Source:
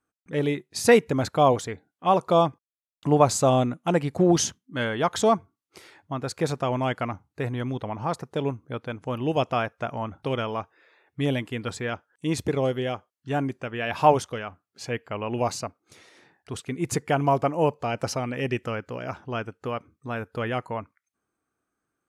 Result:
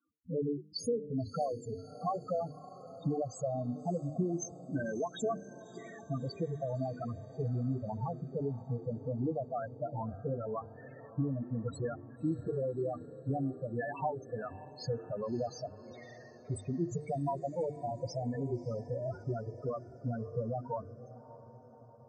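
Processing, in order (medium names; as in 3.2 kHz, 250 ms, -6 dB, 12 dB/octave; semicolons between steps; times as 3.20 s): hum notches 50/100/150/200/250/300/350/400/450 Hz; compression 16:1, threshold -34 dBFS, peak gain reduction 23.5 dB; loudest bins only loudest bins 4; on a send: echo that smears into a reverb 600 ms, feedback 58%, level -15.5 dB; on the sum: trim +6.5 dB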